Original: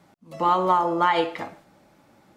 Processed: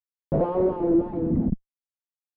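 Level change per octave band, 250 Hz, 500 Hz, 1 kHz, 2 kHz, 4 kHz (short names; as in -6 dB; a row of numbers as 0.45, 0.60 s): +7.5 dB, +2.0 dB, -14.5 dB, under -20 dB, under -25 dB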